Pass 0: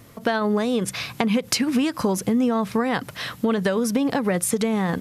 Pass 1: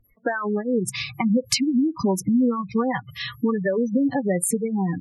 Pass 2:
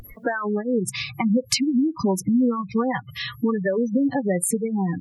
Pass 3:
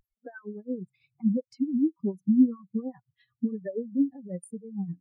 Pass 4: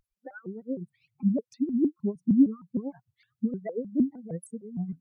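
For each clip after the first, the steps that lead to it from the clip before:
spectral gate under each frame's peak -15 dB strong; spectral noise reduction 26 dB; trim +1.5 dB
upward compressor, threshold -27 dBFS
tremolo triangle 8.8 Hz, depth 65%; spectral contrast expander 2.5:1
vibrato with a chosen wave saw up 6.5 Hz, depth 250 cents

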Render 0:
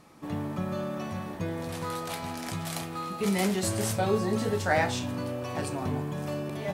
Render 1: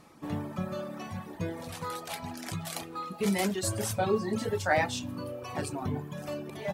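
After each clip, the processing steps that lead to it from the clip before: reverb removal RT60 1.6 s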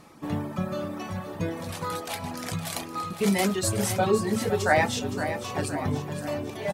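feedback delay 515 ms, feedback 50%, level -10 dB; trim +4.5 dB

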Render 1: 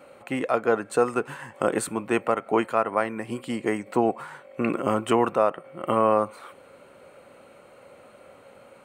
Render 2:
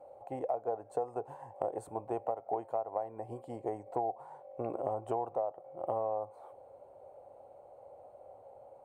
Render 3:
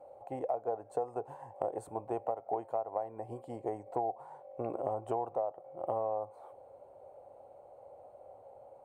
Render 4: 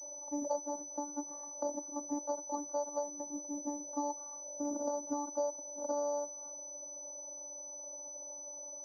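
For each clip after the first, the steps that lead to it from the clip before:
FFT filter 110 Hz 0 dB, 200 Hz -16 dB, 790 Hz +9 dB, 1.3 kHz -19 dB, 2.7 kHz -24 dB, 6.8 kHz -17 dB; compression 6:1, threshold -25 dBFS, peak gain reduction 12 dB; trim -5.5 dB
no audible change
vocoder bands 16, saw 290 Hz; treble shelf 2.3 kHz -11.5 dB; class-D stage that switches slowly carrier 6 kHz

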